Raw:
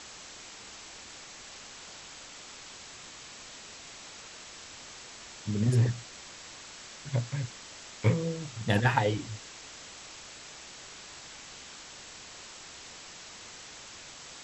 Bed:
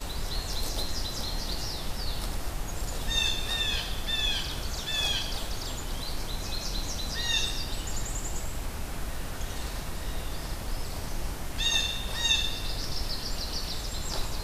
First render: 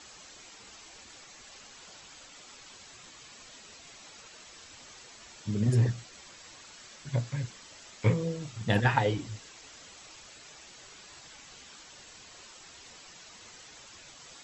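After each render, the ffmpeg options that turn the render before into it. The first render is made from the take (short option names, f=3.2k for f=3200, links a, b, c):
-af "afftdn=nr=8:nf=-48"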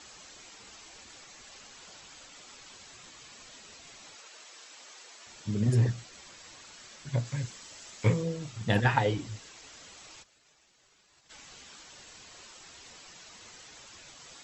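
-filter_complex "[0:a]asettb=1/sr,asplit=3[a][b][c];[a]atrim=end=4.154[d];[b]atrim=start=4.15:end=5.27,asetpts=PTS-STARTPTS,afade=t=in:d=0.004:c=qsin,afade=t=out:st=1.116:d=0.004:c=qsin,highpass=400[e];[c]atrim=start=5.266[f];[d][e]acrossfade=d=0.004:c1=hsin:c2=qsin[g];[g][f]acrossfade=d=0.004:c1=qsin:c2=hsin,asettb=1/sr,asplit=3[h][i][j];[h]atrim=end=7.254[k];[i]atrim=start=7.25:end=8.22,asetpts=PTS-STARTPTS,afade=t=in:d=0.004:c=qsin,afade=t=out:st=0.966:d=0.004:c=qsin,highshelf=f=8.3k:g=10[l];[j]atrim=start=8.216[m];[k][l]acrossfade=d=0.004:c1=hsin:c2=qsin[n];[n][m]acrossfade=d=0.004:c1=qsin:c2=hsin,asplit=3[o][p][q];[o]afade=t=out:st=10.22:d=0.02[r];[p]agate=range=-33dB:threshold=-42dB:ratio=3:release=100:detection=peak,afade=t=in:st=10.22:d=0.02,afade=t=out:st=11.29:d=0.02[s];[q]afade=t=in:st=11.29:d=0.02[t];[r][s][t]amix=inputs=3:normalize=0"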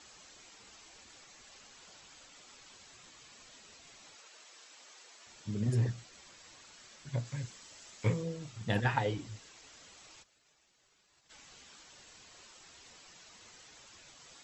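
-af "volume=-5.5dB"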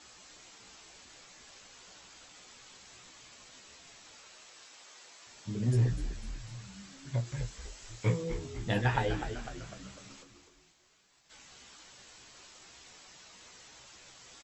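-filter_complex "[0:a]asplit=2[a][b];[b]adelay=16,volume=-5dB[c];[a][c]amix=inputs=2:normalize=0,asplit=2[d][e];[e]asplit=6[f][g][h][i][j][k];[f]adelay=250,afreqshift=-79,volume=-9dB[l];[g]adelay=500,afreqshift=-158,volume=-14.4dB[m];[h]adelay=750,afreqshift=-237,volume=-19.7dB[n];[i]adelay=1000,afreqshift=-316,volume=-25.1dB[o];[j]adelay=1250,afreqshift=-395,volume=-30.4dB[p];[k]adelay=1500,afreqshift=-474,volume=-35.8dB[q];[l][m][n][o][p][q]amix=inputs=6:normalize=0[r];[d][r]amix=inputs=2:normalize=0"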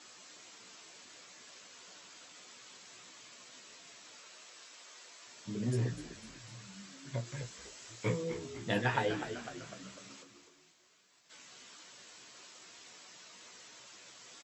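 -af "highpass=170,bandreject=f=810:w=12"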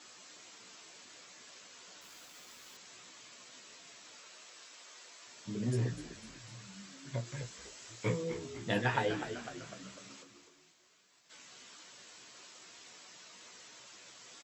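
-filter_complex "[0:a]asettb=1/sr,asplit=3[a][b][c];[a]atrim=end=2.014[d];[b]atrim=start=2.01:end=2.77,asetpts=PTS-STARTPTS,afade=t=in:d=0.004:c=qsin,afade=t=out:st=0.756:d=0.004:c=qsin,acrusher=bits=8:mix=0:aa=0.5[e];[c]atrim=start=2.766[f];[d][e]acrossfade=d=0.004:c1=hsin:c2=qsin[g];[g][f]acrossfade=d=0.004:c1=qsin:c2=hsin"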